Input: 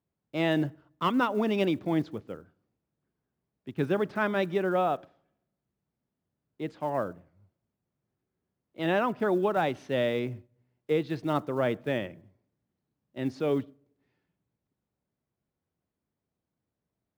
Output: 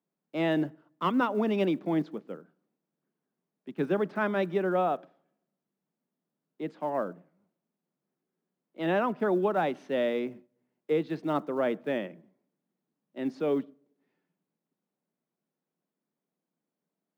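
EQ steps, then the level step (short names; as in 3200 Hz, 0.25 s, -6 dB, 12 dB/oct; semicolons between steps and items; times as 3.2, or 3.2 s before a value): steep high-pass 160 Hz 48 dB/oct; high shelf 2700 Hz -7 dB; 0.0 dB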